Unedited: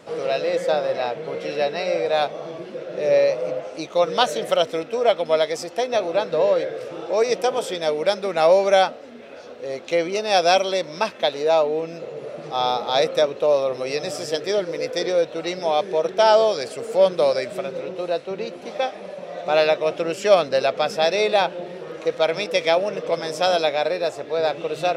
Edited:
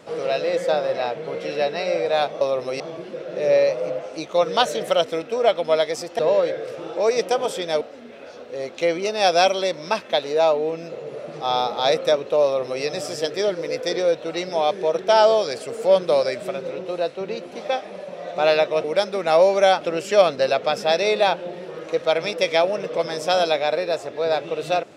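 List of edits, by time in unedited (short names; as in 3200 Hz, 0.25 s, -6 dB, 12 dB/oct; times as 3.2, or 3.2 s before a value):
5.8–6.32 cut
7.94–8.91 move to 19.94
13.54–13.93 copy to 2.41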